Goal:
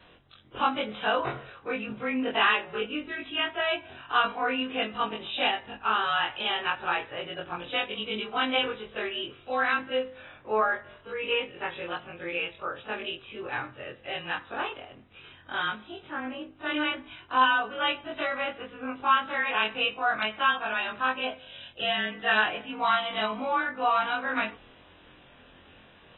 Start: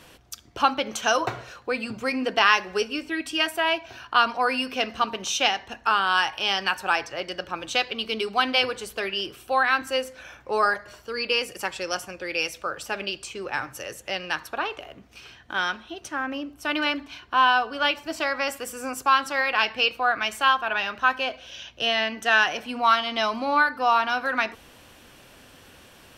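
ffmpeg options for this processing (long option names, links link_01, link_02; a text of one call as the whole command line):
ffmpeg -i in.wav -af "afftfilt=real='re':imag='-im':win_size=2048:overlap=0.75" -ar 24000 -c:a aac -b:a 16k out.aac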